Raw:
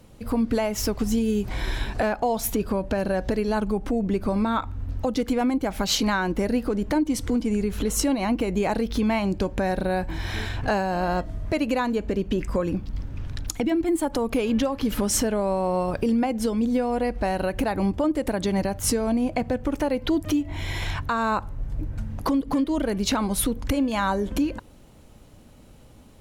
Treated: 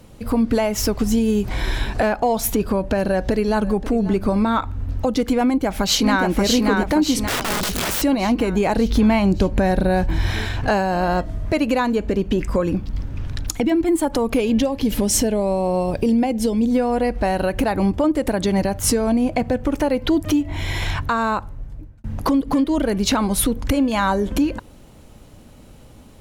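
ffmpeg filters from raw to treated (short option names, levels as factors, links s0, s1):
-filter_complex "[0:a]asplit=2[s0][s1];[s1]afade=t=in:st=3.06:d=0.01,afade=t=out:st=3.78:d=0.01,aecho=0:1:540|1080:0.149624|0.0149624[s2];[s0][s2]amix=inputs=2:normalize=0,asplit=2[s3][s4];[s4]afade=t=in:st=5.46:d=0.01,afade=t=out:st=6.25:d=0.01,aecho=0:1:580|1160|1740|2320|2900|3480|4060|4640:0.707946|0.38937|0.214154|0.117784|0.0647815|0.0356298|0.0195964|0.010778[s5];[s3][s5]amix=inputs=2:normalize=0,asettb=1/sr,asplit=3[s6][s7][s8];[s6]atrim=end=7.284[s9];[s7]atrim=start=7.28:end=8.02,asetpts=PTS-STARTPTS,afade=t=in:d=0.004:c=qsin,afade=t=out:st=0.736:d=0.004:c=qsin,aeval=exprs='(mod(14.1*val(0)+1,2)-1)/14.1':c=same[s10];[s8]atrim=start=8.016[s11];[s9][s10]acrossfade=d=0.004:c1=hsin:c2=qsin[s12];[s12][s11]acrossfade=d=0.004:c1=qsin:c2=hsin,asettb=1/sr,asplit=3[s13][s14][s15];[s13]atrim=end=8.774[s16];[s14]atrim=start=8.77:end=10.33,asetpts=PTS-STARTPTS,afade=t=in:d=0.004:c=qsin,afade=t=out:st=1.556:d=0.004:c=qsin,lowshelf=f=210:g=6.5[s17];[s15]atrim=start=10.326[s18];[s16][s17]acrossfade=d=0.004:c1=hsin:c2=qsin[s19];[s19][s18]acrossfade=d=0.004:c1=qsin:c2=hsin,asettb=1/sr,asplit=3[s20][s21][s22];[s20]atrim=end=14.404[s23];[s21]atrim=start=14.4:end=16.71,asetpts=PTS-STARTPTS,afade=t=in:d=0.004:c=qsin,afade=t=out:st=2.306:d=0.004:c=qsin,equalizer=f=1300:w=2:g=-11.5[s24];[s22]atrim=start=16.706[s25];[s23][s24]acrossfade=d=0.004:c1=hsin:c2=qsin[s26];[s26][s25]acrossfade=d=0.004:c1=qsin:c2=hsin,asplit=2[s27][s28];[s27]atrim=end=22.04,asetpts=PTS-STARTPTS,afade=t=out:st=21.09:d=0.95[s29];[s28]atrim=start=22.04,asetpts=PTS-STARTPTS,afade=t=in:d=0.004:c=hsin[s30];[s29][s30]concat=n=2:v=0:a=1,acontrast=88,volume=0.794"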